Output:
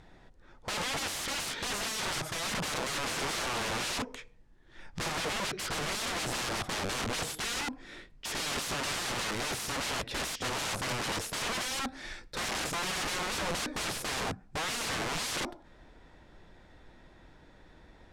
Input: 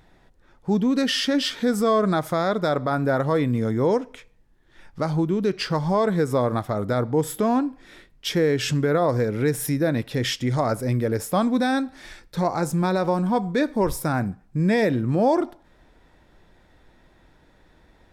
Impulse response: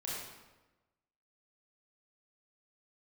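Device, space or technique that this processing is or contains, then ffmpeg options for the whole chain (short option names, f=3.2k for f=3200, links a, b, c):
overflowing digital effects unit: -af "aeval=exprs='(mod(25.1*val(0)+1,2)-1)/25.1':c=same,lowpass=8.7k"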